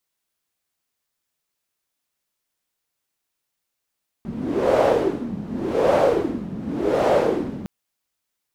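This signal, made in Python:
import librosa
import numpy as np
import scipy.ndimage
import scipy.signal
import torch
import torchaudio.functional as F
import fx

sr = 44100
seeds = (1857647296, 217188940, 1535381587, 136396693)

y = fx.wind(sr, seeds[0], length_s=3.41, low_hz=200.0, high_hz=580.0, q=3.9, gusts=3, swing_db=14.0)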